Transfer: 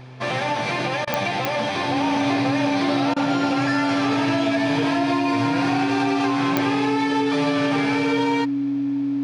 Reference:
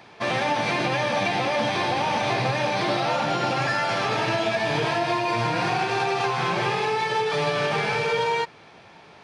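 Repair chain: de-click; de-hum 127.5 Hz, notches 5; band-stop 280 Hz, Q 30; interpolate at 1.05/3.14 s, 22 ms

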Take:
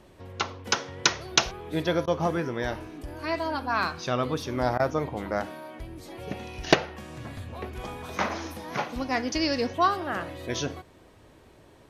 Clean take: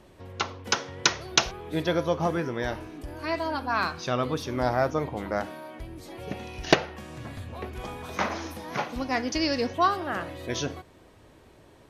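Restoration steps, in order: interpolate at 2.06/4.78 s, 14 ms

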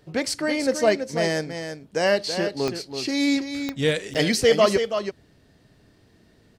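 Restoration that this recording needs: de-click; interpolate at 4.14 s, 8.3 ms; inverse comb 329 ms -8 dB

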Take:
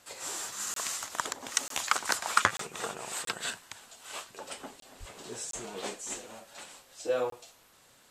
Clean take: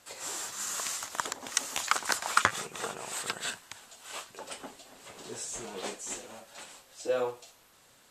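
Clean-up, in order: de-plosive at 4.99 s; interpolate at 0.74/1.68/2.57/3.25/4.80/5.51/7.30 s, 23 ms

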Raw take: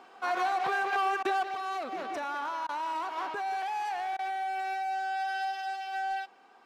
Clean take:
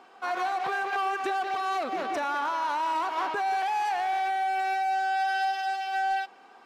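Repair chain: interpolate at 1.23/2.67/4.17 s, 18 ms; gain correction +5.5 dB, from 1.43 s

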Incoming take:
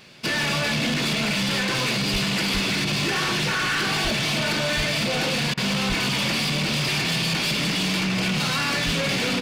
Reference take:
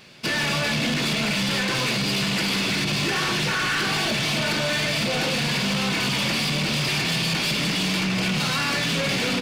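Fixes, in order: de-plosive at 2.12/2.53/4.03/4.76/5.88/8.85 s; interpolate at 5.54 s, 33 ms

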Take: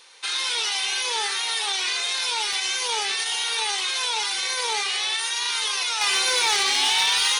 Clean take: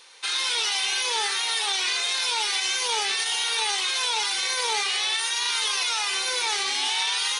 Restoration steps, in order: clip repair -14 dBFS; interpolate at 2.53/6.76 s, 1.8 ms; trim 0 dB, from 6.01 s -5 dB

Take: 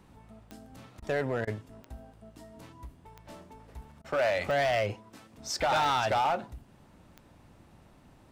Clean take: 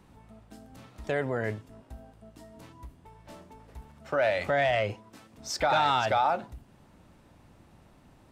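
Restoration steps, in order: clip repair -22.5 dBFS; de-click; interpolate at 1.00/1.45/4.02 s, 22 ms

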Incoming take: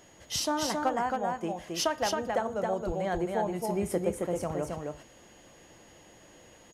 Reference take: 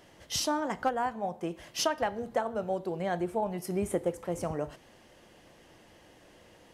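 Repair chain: band-stop 6.7 kHz, Q 30; 2.86–2.98 s: high-pass 140 Hz 24 dB/octave; inverse comb 270 ms -3.5 dB

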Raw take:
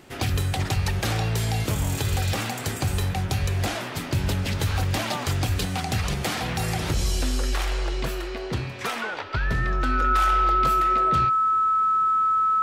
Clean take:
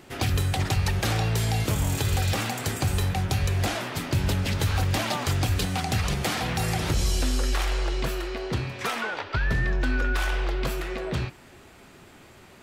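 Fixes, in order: band-stop 1.3 kHz, Q 30

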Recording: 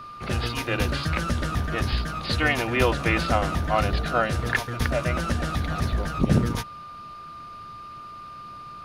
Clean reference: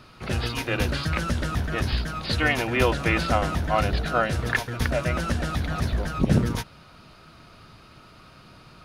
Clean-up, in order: band-stop 1.2 kHz, Q 30

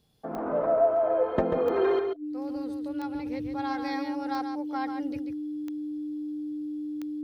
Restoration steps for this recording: de-click; band-stop 300 Hz, Q 30; inverse comb 139 ms -7 dB

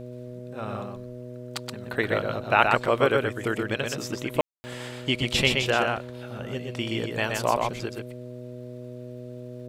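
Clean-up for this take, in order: de-click; de-hum 123.5 Hz, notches 5; room tone fill 4.41–4.64 s; inverse comb 124 ms -4 dB

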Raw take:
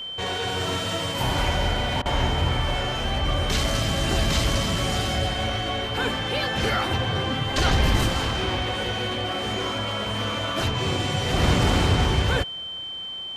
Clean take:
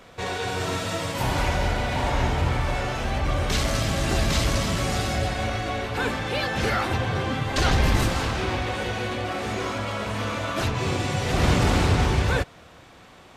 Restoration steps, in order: band-stop 3.1 kHz, Q 30; interpolate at 2.02 s, 35 ms

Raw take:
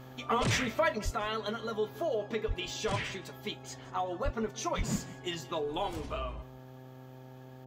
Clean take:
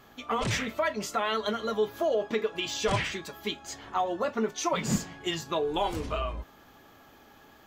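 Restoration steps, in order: de-hum 129.3 Hz, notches 7; de-plosive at 1.04/2.47/4.24/4.77 s; inverse comb 169 ms -20.5 dB; gain correction +5.5 dB, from 0.98 s

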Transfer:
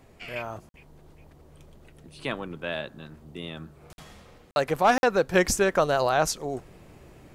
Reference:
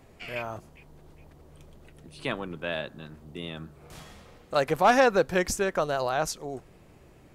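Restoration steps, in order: interpolate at 0.69/3.93/4.51/4.98 s, 51 ms; gain correction -4.5 dB, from 5.34 s

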